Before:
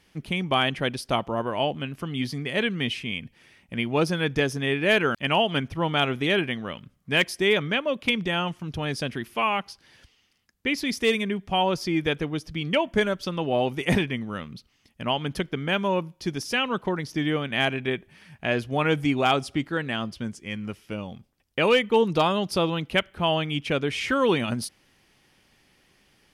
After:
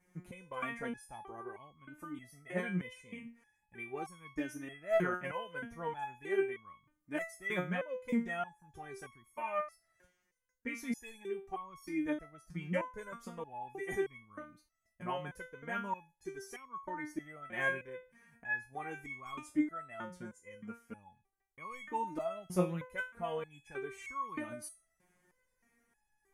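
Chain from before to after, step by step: band shelf 3700 Hz -16 dB 1.2 oct; stepped resonator 3.2 Hz 180–1100 Hz; gain +3.5 dB

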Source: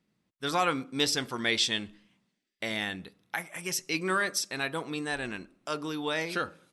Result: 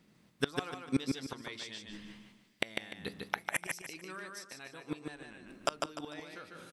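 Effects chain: flipped gate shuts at -26 dBFS, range -28 dB; on a send: feedback echo 0.149 s, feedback 32%, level -4 dB; on the sum: gain +10 dB

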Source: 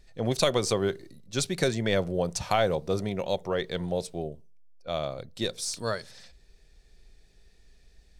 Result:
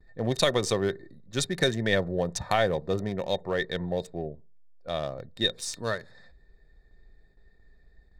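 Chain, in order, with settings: Wiener smoothing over 15 samples; gate with hold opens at -50 dBFS; small resonant body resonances 1800/3700 Hz, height 15 dB, ringing for 45 ms

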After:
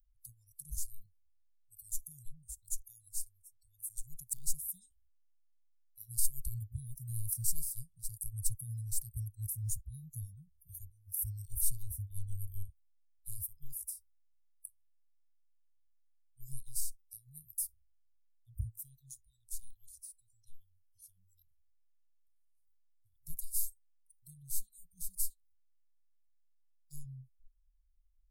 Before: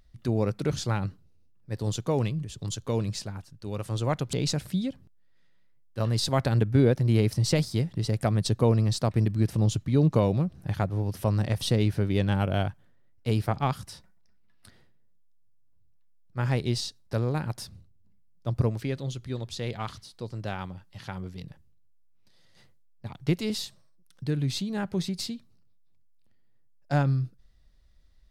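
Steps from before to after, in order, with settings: spectral noise reduction 26 dB; inverse Chebyshev band-stop 260–2400 Hz, stop band 80 dB; gain +15.5 dB

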